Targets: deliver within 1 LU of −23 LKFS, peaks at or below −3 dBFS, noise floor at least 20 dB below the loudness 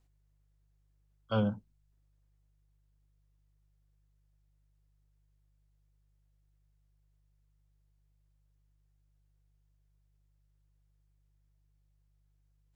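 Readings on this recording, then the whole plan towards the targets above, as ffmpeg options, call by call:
mains hum 50 Hz; hum harmonics up to 150 Hz; level of the hum −69 dBFS; integrated loudness −33.0 LKFS; sample peak −18.0 dBFS; target loudness −23.0 LKFS
→ -af "bandreject=frequency=50:width_type=h:width=4,bandreject=frequency=100:width_type=h:width=4,bandreject=frequency=150:width_type=h:width=4"
-af "volume=10dB"

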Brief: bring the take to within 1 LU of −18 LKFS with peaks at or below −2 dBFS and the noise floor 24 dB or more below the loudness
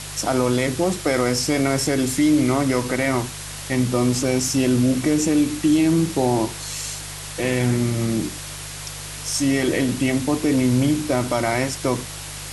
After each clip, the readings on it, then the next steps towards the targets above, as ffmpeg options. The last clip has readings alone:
mains hum 50 Hz; hum harmonics up to 150 Hz; level of the hum −37 dBFS; background noise floor −34 dBFS; target noise floor −45 dBFS; integrated loudness −21.0 LKFS; sample peak −7.0 dBFS; target loudness −18.0 LKFS
→ -af "bandreject=frequency=50:width_type=h:width=4,bandreject=frequency=100:width_type=h:width=4,bandreject=frequency=150:width_type=h:width=4"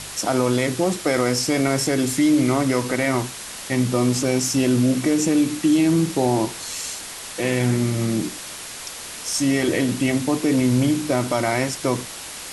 mains hum none found; background noise floor −35 dBFS; target noise floor −45 dBFS
→ -af "afftdn=noise_reduction=10:noise_floor=-35"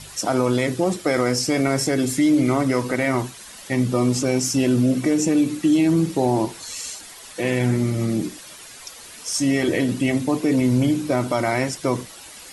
background noise floor −41 dBFS; target noise floor −45 dBFS
→ -af "afftdn=noise_reduction=6:noise_floor=-41"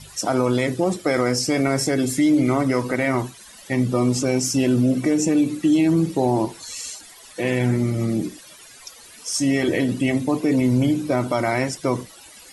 background noise floor −45 dBFS; integrated loudness −21.0 LKFS; sample peak −7.5 dBFS; target loudness −18.0 LKFS
→ -af "volume=3dB"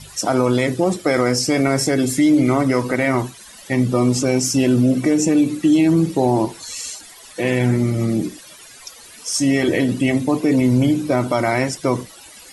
integrated loudness −18.0 LKFS; sample peak −4.5 dBFS; background noise floor −42 dBFS

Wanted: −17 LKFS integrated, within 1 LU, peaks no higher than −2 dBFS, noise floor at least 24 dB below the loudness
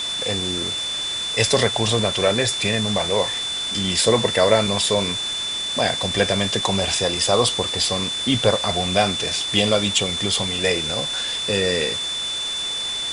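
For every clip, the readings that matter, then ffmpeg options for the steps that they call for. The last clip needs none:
interfering tone 3,500 Hz; level of the tone −24 dBFS; background noise floor −26 dBFS; target noise floor −44 dBFS; integrated loudness −20.0 LKFS; sample peak −2.5 dBFS; target loudness −17.0 LKFS
→ -af "bandreject=frequency=3500:width=30"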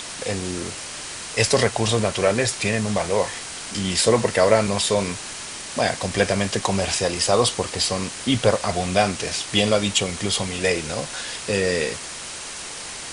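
interfering tone none found; background noise floor −34 dBFS; target noise floor −46 dBFS
→ -af "afftdn=noise_reduction=12:noise_floor=-34"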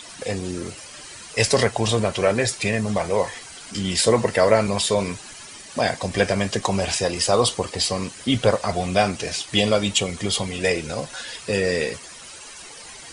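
background noise floor −41 dBFS; target noise floor −46 dBFS
→ -af "afftdn=noise_reduction=6:noise_floor=-41"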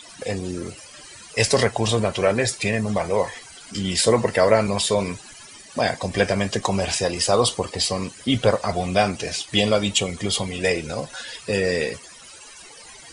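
background noise floor −44 dBFS; target noise floor −46 dBFS
→ -af "afftdn=noise_reduction=6:noise_floor=-44"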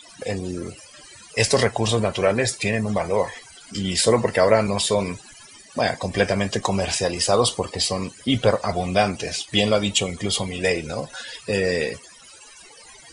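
background noise floor −47 dBFS; integrated loudness −22.0 LKFS; sample peak −3.5 dBFS; target loudness −17.0 LKFS
→ -af "volume=5dB,alimiter=limit=-2dB:level=0:latency=1"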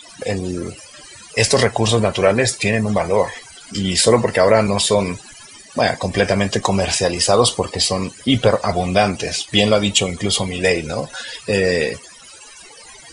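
integrated loudness −17.5 LKFS; sample peak −2.0 dBFS; background noise floor −42 dBFS

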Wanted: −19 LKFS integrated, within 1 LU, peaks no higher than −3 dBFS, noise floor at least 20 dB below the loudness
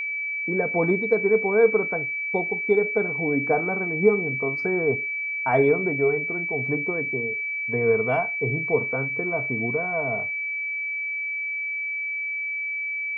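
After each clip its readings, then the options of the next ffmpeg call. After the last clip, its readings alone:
interfering tone 2,300 Hz; level of the tone −26 dBFS; integrated loudness −23.5 LKFS; sample peak −6.5 dBFS; target loudness −19.0 LKFS
→ -af "bandreject=frequency=2300:width=30"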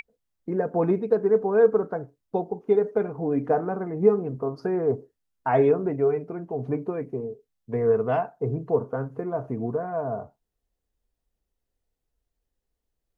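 interfering tone none found; integrated loudness −25.5 LKFS; sample peak −7.5 dBFS; target loudness −19.0 LKFS
→ -af "volume=6.5dB,alimiter=limit=-3dB:level=0:latency=1"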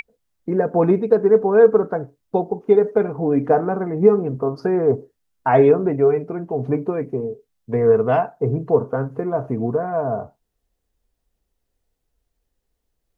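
integrated loudness −19.0 LKFS; sample peak −3.0 dBFS; background noise floor −76 dBFS

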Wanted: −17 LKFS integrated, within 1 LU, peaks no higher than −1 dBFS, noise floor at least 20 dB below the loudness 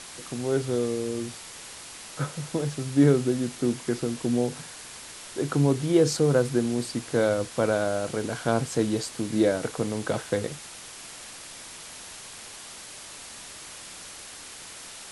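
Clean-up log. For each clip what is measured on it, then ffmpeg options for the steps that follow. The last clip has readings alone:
background noise floor −43 dBFS; target noise floor −47 dBFS; integrated loudness −26.5 LKFS; sample peak −8.0 dBFS; target loudness −17.0 LKFS
→ -af "afftdn=noise_reduction=6:noise_floor=-43"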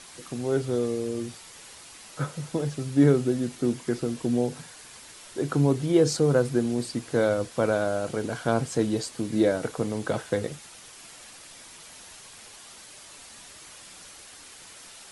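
background noise floor −47 dBFS; integrated loudness −26.5 LKFS; sample peak −8.0 dBFS; target loudness −17.0 LKFS
→ -af "volume=9.5dB,alimiter=limit=-1dB:level=0:latency=1"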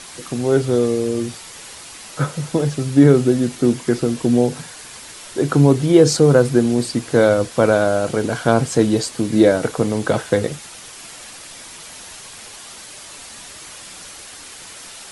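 integrated loudness −17.0 LKFS; sample peak −1.0 dBFS; background noise floor −38 dBFS

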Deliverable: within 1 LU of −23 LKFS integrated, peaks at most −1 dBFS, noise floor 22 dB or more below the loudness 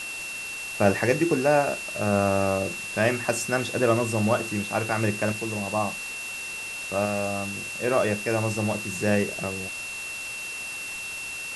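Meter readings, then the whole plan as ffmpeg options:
interfering tone 2,700 Hz; level of the tone −33 dBFS; background noise floor −35 dBFS; target noise floor −48 dBFS; integrated loudness −26.0 LKFS; sample peak −6.5 dBFS; target loudness −23.0 LKFS
→ -af "bandreject=frequency=2700:width=30"
-af "afftdn=noise_reduction=13:noise_floor=-35"
-af "volume=3dB"

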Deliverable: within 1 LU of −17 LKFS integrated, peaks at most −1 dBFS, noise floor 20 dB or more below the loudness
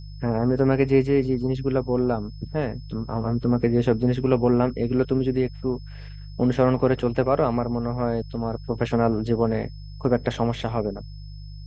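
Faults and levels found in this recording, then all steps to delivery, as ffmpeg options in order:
mains hum 50 Hz; hum harmonics up to 150 Hz; level of the hum −35 dBFS; interfering tone 5,200 Hz; level of the tone −52 dBFS; integrated loudness −23.5 LKFS; sample peak −6.0 dBFS; target loudness −17.0 LKFS
→ -af "bandreject=frequency=50:width_type=h:width=4,bandreject=frequency=100:width_type=h:width=4,bandreject=frequency=150:width_type=h:width=4"
-af "bandreject=frequency=5200:width=30"
-af "volume=6.5dB,alimiter=limit=-1dB:level=0:latency=1"

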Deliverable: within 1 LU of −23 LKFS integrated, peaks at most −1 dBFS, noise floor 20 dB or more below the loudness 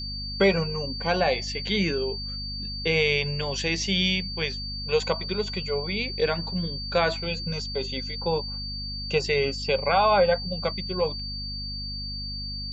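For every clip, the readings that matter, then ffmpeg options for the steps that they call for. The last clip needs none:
mains hum 50 Hz; hum harmonics up to 250 Hz; level of the hum −34 dBFS; interfering tone 4,600 Hz; level of the tone −33 dBFS; integrated loudness −26.0 LKFS; sample peak −8.5 dBFS; target loudness −23.0 LKFS
→ -af "bandreject=frequency=50:width_type=h:width=6,bandreject=frequency=100:width_type=h:width=6,bandreject=frequency=150:width_type=h:width=6,bandreject=frequency=200:width_type=h:width=6,bandreject=frequency=250:width_type=h:width=6"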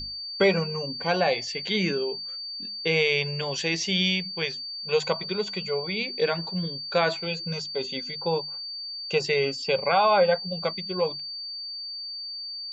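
mains hum none found; interfering tone 4,600 Hz; level of the tone −33 dBFS
→ -af "bandreject=frequency=4600:width=30"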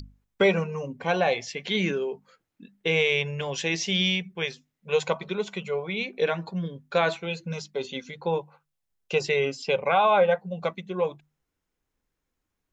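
interfering tone none found; integrated loudness −26.5 LKFS; sample peak −9.0 dBFS; target loudness −23.0 LKFS
→ -af "volume=3.5dB"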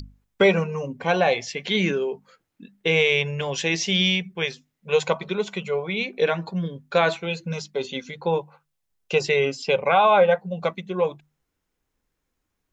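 integrated loudness −23.0 LKFS; sample peak −5.5 dBFS; background noise floor −78 dBFS

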